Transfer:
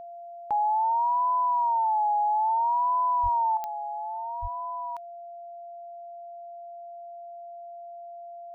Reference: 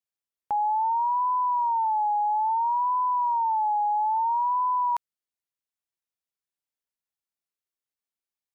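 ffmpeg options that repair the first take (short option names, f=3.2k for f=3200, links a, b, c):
-filter_complex "[0:a]adeclick=t=4,bandreject=f=690:w=30,asplit=3[a][b][c];[a]afade=t=out:st=3.22:d=0.02[d];[b]highpass=f=140:w=0.5412,highpass=f=140:w=1.3066,afade=t=in:st=3.22:d=0.02,afade=t=out:st=3.34:d=0.02[e];[c]afade=t=in:st=3.34:d=0.02[f];[d][e][f]amix=inputs=3:normalize=0,asplit=3[g][h][i];[g]afade=t=out:st=4.41:d=0.02[j];[h]highpass=f=140:w=0.5412,highpass=f=140:w=1.3066,afade=t=in:st=4.41:d=0.02,afade=t=out:st=4.53:d=0.02[k];[i]afade=t=in:st=4.53:d=0.02[l];[j][k][l]amix=inputs=3:normalize=0,asetnsamples=n=441:p=0,asendcmd='3.57 volume volume 10dB',volume=0dB"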